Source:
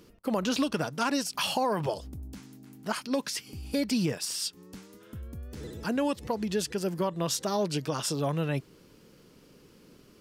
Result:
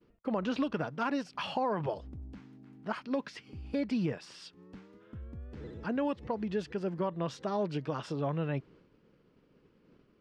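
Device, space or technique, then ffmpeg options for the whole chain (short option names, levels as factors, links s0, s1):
hearing-loss simulation: -af "lowpass=2400,agate=range=0.0224:threshold=0.00282:ratio=3:detection=peak,volume=0.668"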